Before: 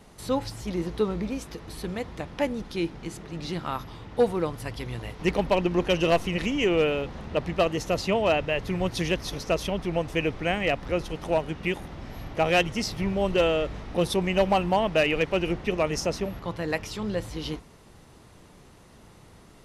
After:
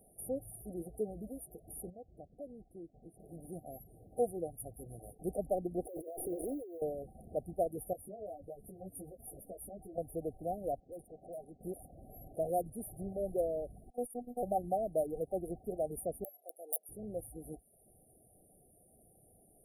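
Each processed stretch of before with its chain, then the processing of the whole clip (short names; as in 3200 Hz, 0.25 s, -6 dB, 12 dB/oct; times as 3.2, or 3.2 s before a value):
1.9–3.2 LPF 1300 Hz 6 dB/oct + compressor 2:1, threshold -38 dBFS + expander -40 dBFS
5.85–6.82 resonant low shelf 270 Hz -8.5 dB, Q 3 + negative-ratio compressor -29 dBFS + companded quantiser 8-bit
7.93–9.98 compressor 10:1, threshold -27 dBFS + doubler 21 ms -13.5 dB + ensemble effect
10.8–11.61 HPF 170 Hz 6 dB/oct + low-pass opened by the level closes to 1800 Hz, open at -20 dBFS + tube stage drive 32 dB, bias 0.4
13.9–14.43 HPF 47 Hz + gate -28 dBFS, range -13 dB + robotiser 244 Hz
16.24–16.89 wrapped overs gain 20 dB + Bessel high-pass 710 Hz, order 4
whole clip: FFT band-reject 780–9000 Hz; reverb removal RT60 0.52 s; tilt shelf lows -9 dB, about 840 Hz; gain -6 dB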